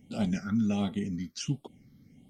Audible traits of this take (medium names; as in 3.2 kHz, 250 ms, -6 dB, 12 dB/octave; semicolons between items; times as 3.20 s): phasing stages 6, 1.4 Hz, lowest notch 690–1700 Hz